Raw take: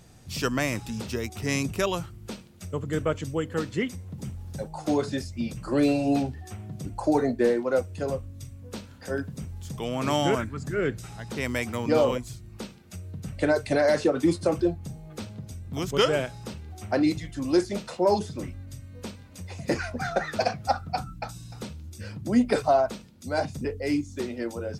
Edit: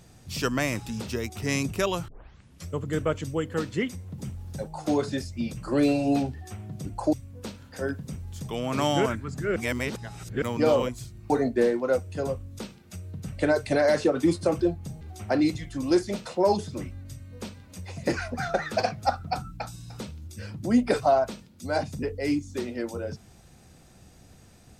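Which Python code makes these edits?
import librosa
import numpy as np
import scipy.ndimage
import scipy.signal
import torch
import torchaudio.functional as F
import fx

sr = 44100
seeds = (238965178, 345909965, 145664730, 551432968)

y = fx.edit(x, sr, fx.tape_start(start_s=2.08, length_s=0.61),
    fx.move(start_s=7.13, length_s=1.29, to_s=12.59),
    fx.reverse_span(start_s=10.85, length_s=0.86),
    fx.cut(start_s=15.01, length_s=1.62), tone=tone)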